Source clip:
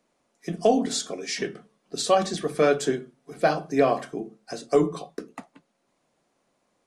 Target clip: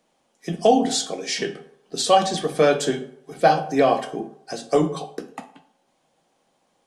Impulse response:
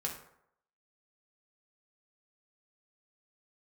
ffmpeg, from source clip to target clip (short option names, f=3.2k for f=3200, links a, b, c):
-filter_complex "[0:a]asplit=2[a][b];[b]equalizer=f=800:t=o:w=0.33:g=9,equalizer=f=1.25k:t=o:w=0.33:g=-9,equalizer=f=2k:t=o:w=0.33:g=-5,equalizer=f=3.15k:t=o:w=0.33:g=10[c];[1:a]atrim=start_sample=2205,lowshelf=f=250:g=-11[d];[c][d]afir=irnorm=-1:irlink=0,volume=-3dB[e];[a][e]amix=inputs=2:normalize=0"